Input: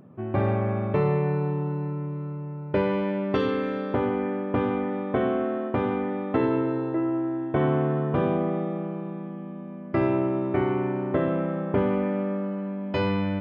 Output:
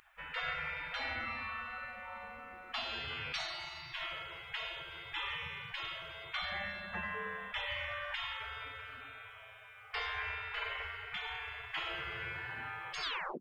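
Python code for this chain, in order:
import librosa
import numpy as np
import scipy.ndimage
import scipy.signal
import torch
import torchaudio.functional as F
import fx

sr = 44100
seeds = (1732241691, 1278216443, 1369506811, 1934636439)

y = fx.tape_stop_end(x, sr, length_s=0.38)
y = fx.spec_gate(y, sr, threshold_db=-30, keep='weak')
y = y * 10.0 ** (12.0 / 20.0)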